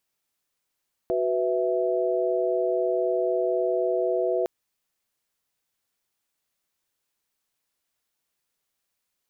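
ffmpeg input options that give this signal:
-f lavfi -i "aevalsrc='0.0501*(sin(2*PI*369.99*t)+sin(2*PI*493.88*t)+sin(2*PI*659.26*t))':d=3.36:s=44100"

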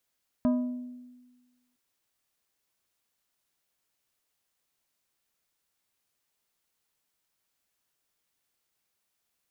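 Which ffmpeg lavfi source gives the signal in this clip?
-f lavfi -i "aevalsrc='0.1*pow(10,-3*t/1.36)*sin(2*PI*248*t)+0.0376*pow(10,-3*t/0.716)*sin(2*PI*620*t)+0.0141*pow(10,-3*t/0.515)*sin(2*PI*992*t)+0.00531*pow(10,-3*t/0.441)*sin(2*PI*1240*t)+0.002*pow(10,-3*t/0.367)*sin(2*PI*1612*t)':d=1.31:s=44100"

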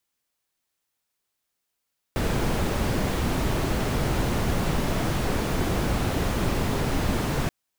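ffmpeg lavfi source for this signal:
-f lavfi -i "anoisesrc=c=brown:a=0.295:d=5.33:r=44100:seed=1"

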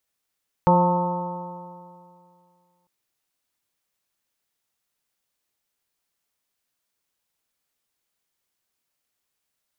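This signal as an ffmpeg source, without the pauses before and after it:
-f lavfi -i "aevalsrc='0.141*pow(10,-3*t/2.33)*sin(2*PI*175.15*t)+0.0501*pow(10,-3*t/2.33)*sin(2*PI*351.19*t)+0.112*pow(10,-3*t/2.33)*sin(2*PI*529*t)+0.0266*pow(10,-3*t/2.33)*sin(2*PI*709.46*t)+0.178*pow(10,-3*t/2.33)*sin(2*PI*893.4*t)+0.0422*pow(10,-3*t/2.33)*sin(2*PI*1081.65*t)+0.0211*pow(10,-3*t/2.33)*sin(2*PI*1275*t)':d=2.2:s=44100"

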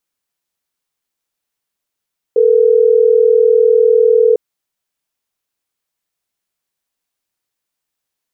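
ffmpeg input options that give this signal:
-f lavfi -i "aevalsrc='0.335*(sin(2*PI*440*t)+sin(2*PI*480*t))*clip(min(mod(t,6),2-mod(t,6))/0.005,0,1)':d=3.12:s=44100"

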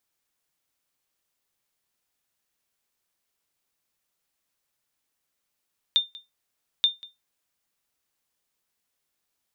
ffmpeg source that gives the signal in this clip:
-f lavfi -i "aevalsrc='0.251*(sin(2*PI*3610*mod(t,0.88))*exp(-6.91*mod(t,0.88)/0.19)+0.0794*sin(2*PI*3610*max(mod(t,0.88)-0.19,0))*exp(-6.91*max(mod(t,0.88)-0.19,0)/0.19))':d=1.76:s=44100"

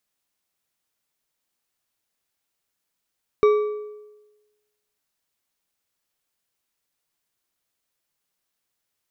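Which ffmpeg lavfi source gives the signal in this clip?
-f lavfi -i "aevalsrc='0.282*pow(10,-3*t/1.14)*sin(2*PI*421*t)+0.0891*pow(10,-3*t/0.841)*sin(2*PI*1160.7*t)+0.0282*pow(10,-3*t/0.687)*sin(2*PI*2275.1*t)+0.00891*pow(10,-3*t/0.591)*sin(2*PI*3760.8*t)+0.00282*pow(10,-3*t/0.524)*sin(2*PI*5616.1*t)':d=1.55:s=44100"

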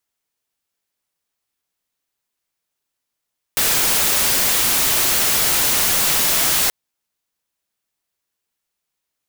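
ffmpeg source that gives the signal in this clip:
-f lavfi -i "anoisesrc=c=white:a=0.245:d=3.13:r=44100:seed=1"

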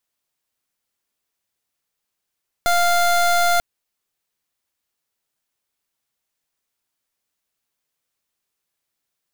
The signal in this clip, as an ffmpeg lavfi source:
-f lavfi -i "aevalsrc='0.15*(2*lt(mod(698*t,1),0.26)-1)':d=0.94:s=44100"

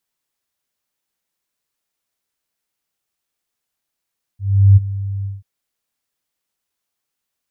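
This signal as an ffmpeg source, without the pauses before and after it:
-f lavfi -i "aevalsrc='0.668*sin(2*PI*98.7*t)':d=1.036:s=44100,afade=t=in:d=0.375,afade=t=out:st=0.375:d=0.023:silence=0.15,afade=t=out:st=0.86:d=0.176"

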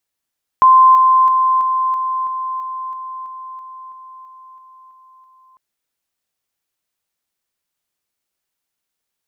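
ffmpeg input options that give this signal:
-f lavfi -i "aevalsrc='pow(10,(-5-3*floor(t/0.33))/20)*sin(2*PI*1040*t)':d=4.95:s=44100"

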